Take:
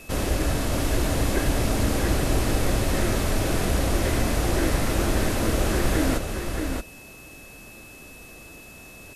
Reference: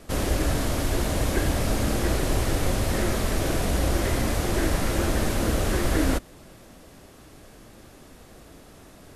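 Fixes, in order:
notch filter 2,600 Hz, Q 30
broadband denoise 6 dB, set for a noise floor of −44 dBFS
echo removal 626 ms −5.5 dB

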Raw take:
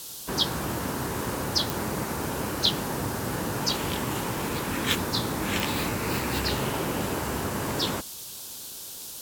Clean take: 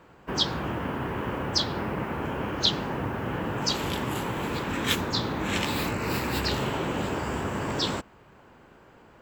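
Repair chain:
click removal
noise reduction from a noise print 14 dB

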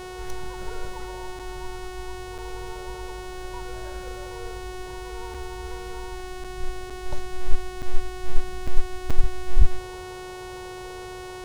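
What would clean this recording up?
hum removal 367.8 Hz, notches 32
repair the gap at 0:01.39/0:02.38/0:05.34/0:06.44/0:06.90/0:07.82/0:08.67/0:09.10, 5.5 ms

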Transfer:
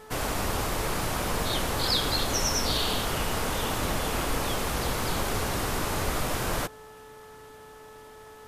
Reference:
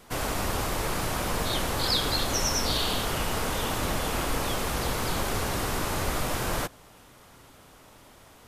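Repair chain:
hum removal 433.4 Hz, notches 4

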